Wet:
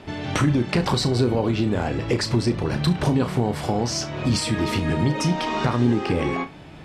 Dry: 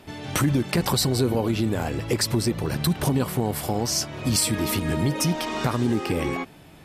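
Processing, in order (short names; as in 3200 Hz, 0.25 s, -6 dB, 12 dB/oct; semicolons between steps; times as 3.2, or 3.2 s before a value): in parallel at 0 dB: compressor, threshold -31 dBFS, peak gain reduction 13 dB; on the sum: air absorption 95 m; flutter echo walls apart 5.7 m, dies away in 0.2 s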